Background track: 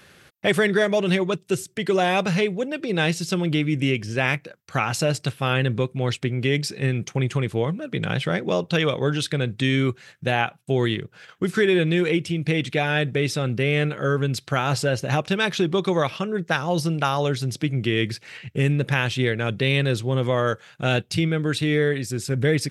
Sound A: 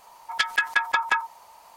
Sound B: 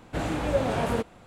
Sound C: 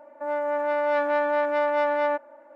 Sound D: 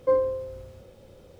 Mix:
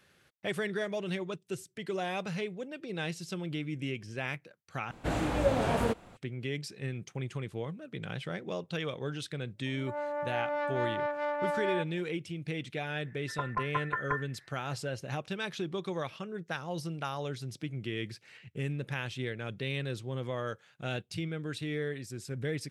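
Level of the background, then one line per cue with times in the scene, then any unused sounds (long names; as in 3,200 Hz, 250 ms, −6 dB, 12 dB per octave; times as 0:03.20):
background track −14 dB
0:04.91: overwrite with B −2 dB
0:09.52: mix in C −8.5 dB, fades 0.10 s + multiband delay without the direct sound lows, highs 140 ms, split 380 Hz
0:12.99: mix in A −10.5 dB + voice inversion scrambler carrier 2,700 Hz
not used: D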